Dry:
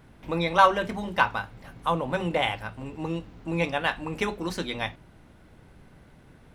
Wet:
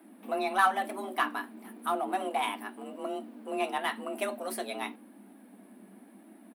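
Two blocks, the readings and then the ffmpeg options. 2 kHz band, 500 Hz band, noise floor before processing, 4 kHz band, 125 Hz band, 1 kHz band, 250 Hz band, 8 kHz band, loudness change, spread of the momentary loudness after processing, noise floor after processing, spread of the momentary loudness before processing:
-6.0 dB, -5.5 dB, -54 dBFS, -7.0 dB, under -25 dB, -4.5 dB, -6.5 dB, +2.0 dB, -5.5 dB, 14 LU, -55 dBFS, 14 LU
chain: -filter_complex "[0:a]firequalizer=gain_entry='entry(120,0);entry(180,-8);entry(320,-10);entry(460,-1);entry(920,-7);entry(1300,-6);entry(6300,-13);entry(9000,8)':delay=0.05:min_phase=1,flanger=delay=1.6:depth=3.2:regen=-51:speed=0.95:shape=sinusoidal,afreqshift=190,asplit=2[a][b];[b]asoftclip=type=hard:threshold=-32.5dB,volume=-11dB[c];[a][c]amix=inputs=2:normalize=0,volume=2.5dB"

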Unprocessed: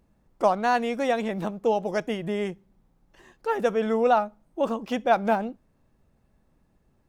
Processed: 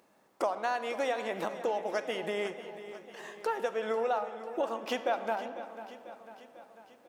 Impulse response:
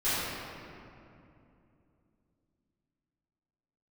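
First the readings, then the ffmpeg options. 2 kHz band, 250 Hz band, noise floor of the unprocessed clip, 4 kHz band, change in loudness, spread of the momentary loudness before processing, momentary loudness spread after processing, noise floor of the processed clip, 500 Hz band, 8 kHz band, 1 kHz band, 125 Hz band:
-5.0 dB, -13.0 dB, -67 dBFS, -3.0 dB, -8.0 dB, 8 LU, 16 LU, -66 dBFS, -7.0 dB, n/a, -8.0 dB, under -15 dB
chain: -filter_complex "[0:a]highpass=470,acompressor=threshold=-40dB:ratio=4,aecho=1:1:496|992|1488|1984|2480|2976:0.2|0.116|0.0671|0.0389|0.0226|0.0131,asplit=2[a][b];[1:a]atrim=start_sample=2205[c];[b][c]afir=irnorm=-1:irlink=0,volume=-22dB[d];[a][d]amix=inputs=2:normalize=0,volume=8dB"

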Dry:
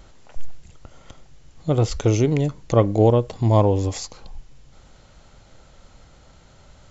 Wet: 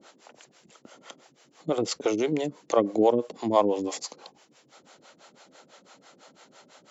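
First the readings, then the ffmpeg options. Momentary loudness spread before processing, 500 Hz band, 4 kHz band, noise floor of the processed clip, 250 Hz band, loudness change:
12 LU, -4.0 dB, -1.0 dB, -62 dBFS, -5.0 dB, -6.5 dB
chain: -filter_complex "[0:a]highpass=f=230:w=0.5412,highpass=f=230:w=1.3066,asplit=2[a][b];[b]acompressor=threshold=-29dB:ratio=6,volume=-1dB[c];[a][c]amix=inputs=2:normalize=0,acrossover=split=420[d][e];[d]aeval=exprs='val(0)*(1-1/2+1/2*cos(2*PI*6*n/s))':c=same[f];[e]aeval=exprs='val(0)*(1-1/2-1/2*cos(2*PI*6*n/s))':c=same[g];[f][g]amix=inputs=2:normalize=0"

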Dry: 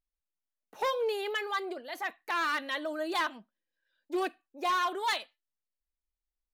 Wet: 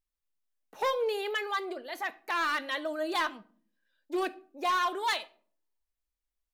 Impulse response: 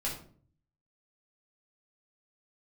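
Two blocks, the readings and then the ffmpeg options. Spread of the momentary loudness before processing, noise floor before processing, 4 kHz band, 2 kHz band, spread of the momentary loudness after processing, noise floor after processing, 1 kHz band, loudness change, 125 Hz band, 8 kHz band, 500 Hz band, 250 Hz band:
8 LU, under -85 dBFS, +0.5 dB, +1.0 dB, 8 LU, under -85 dBFS, +1.0 dB, +1.0 dB, n/a, +0.5 dB, +1.0 dB, +0.5 dB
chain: -filter_complex "[0:a]asplit=2[a][b];[1:a]atrim=start_sample=2205[c];[b][c]afir=irnorm=-1:irlink=0,volume=-17.5dB[d];[a][d]amix=inputs=2:normalize=0"

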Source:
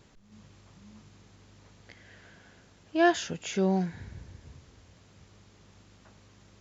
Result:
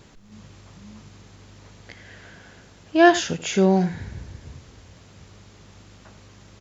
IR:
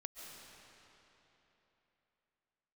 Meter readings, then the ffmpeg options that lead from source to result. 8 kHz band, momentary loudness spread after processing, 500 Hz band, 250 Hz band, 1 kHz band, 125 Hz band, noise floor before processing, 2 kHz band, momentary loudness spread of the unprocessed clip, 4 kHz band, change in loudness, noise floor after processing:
n/a, 21 LU, +8.5 dB, +8.5 dB, +8.5 dB, +8.0 dB, -59 dBFS, +8.5 dB, 17 LU, +8.5 dB, +8.0 dB, -50 dBFS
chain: -af "aecho=1:1:82:0.168,volume=8.5dB"

